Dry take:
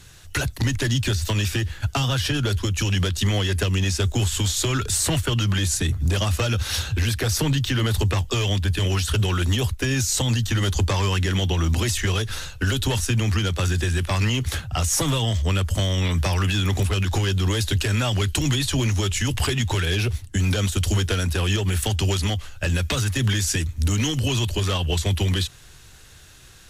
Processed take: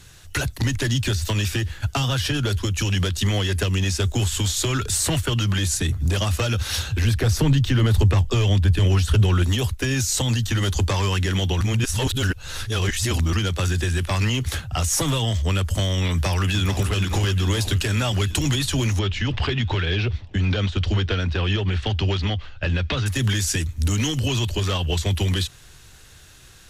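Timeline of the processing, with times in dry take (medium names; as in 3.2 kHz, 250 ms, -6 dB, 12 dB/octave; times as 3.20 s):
7.04–9.44 s: tilt EQ -1.5 dB/octave
11.61–13.33 s: reverse
16.10–16.83 s: echo throw 440 ms, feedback 70%, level -9 dB
18.99–23.06 s: low-pass 4.3 kHz 24 dB/octave
24.20–25.15 s: peaking EQ 10 kHz -5.5 dB 0.58 oct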